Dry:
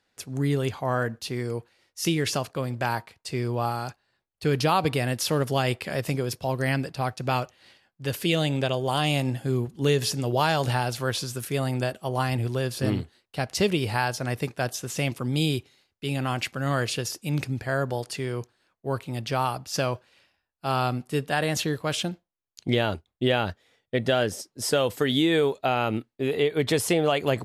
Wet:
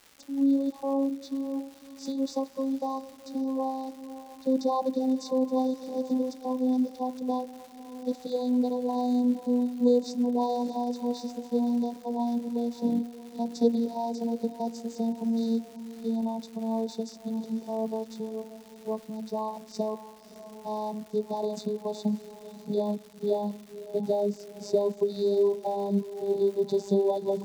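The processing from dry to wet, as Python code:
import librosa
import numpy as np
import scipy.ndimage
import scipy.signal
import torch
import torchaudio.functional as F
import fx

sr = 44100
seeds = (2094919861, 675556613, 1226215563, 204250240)

y = fx.vocoder_glide(x, sr, note=61, semitones=-6)
y = fx.brickwall_bandstop(y, sr, low_hz=1100.0, high_hz=3500.0)
y = fx.echo_diffused(y, sr, ms=594, feedback_pct=46, wet_db=-14)
y = fx.dmg_crackle(y, sr, seeds[0], per_s=400.0, level_db=-40.0)
y = y * librosa.db_to_amplitude(-1.5)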